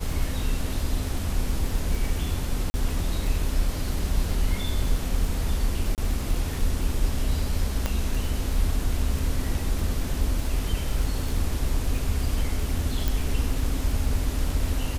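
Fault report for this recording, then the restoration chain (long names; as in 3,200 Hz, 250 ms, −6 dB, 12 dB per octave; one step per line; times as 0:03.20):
surface crackle 24 per second −28 dBFS
0:02.70–0:02.74: drop-out 40 ms
0:05.95–0:05.98: drop-out 28 ms
0:07.86: click −11 dBFS
0:13.08: click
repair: click removal
repair the gap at 0:02.70, 40 ms
repair the gap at 0:05.95, 28 ms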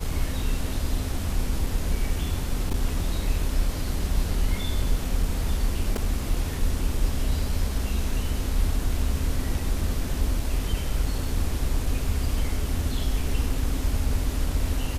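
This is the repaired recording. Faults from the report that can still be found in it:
0:07.86: click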